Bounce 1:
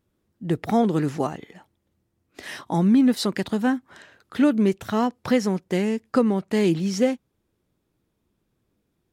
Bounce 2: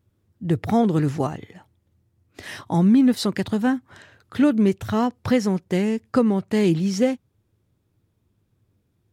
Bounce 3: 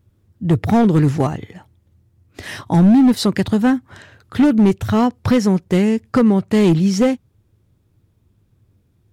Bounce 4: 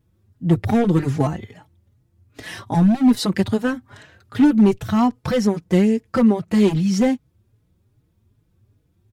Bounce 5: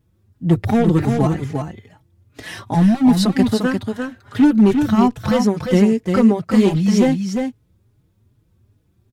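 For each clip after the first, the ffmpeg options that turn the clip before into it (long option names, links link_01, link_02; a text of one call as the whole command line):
ffmpeg -i in.wav -af "equalizer=frequency=100:width=1.8:gain=14.5" out.wav
ffmpeg -i in.wav -af "volume=14.5dB,asoftclip=hard,volume=-14.5dB,lowshelf=frequency=120:gain=7.5,volume=5dB" out.wav
ffmpeg -i in.wav -filter_complex "[0:a]asplit=2[link_01][link_02];[link_02]adelay=4.3,afreqshift=2.5[link_03];[link_01][link_03]amix=inputs=2:normalize=1" out.wav
ffmpeg -i in.wav -af "aecho=1:1:349:0.531,volume=1.5dB" out.wav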